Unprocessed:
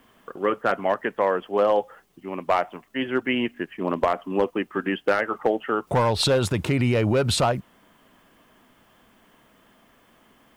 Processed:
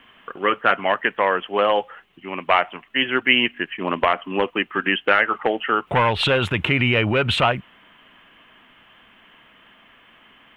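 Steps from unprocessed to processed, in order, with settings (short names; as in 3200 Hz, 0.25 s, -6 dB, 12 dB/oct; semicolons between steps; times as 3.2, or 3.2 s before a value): EQ curve 560 Hz 0 dB, 3000 Hz +14 dB, 4800 Hz -12 dB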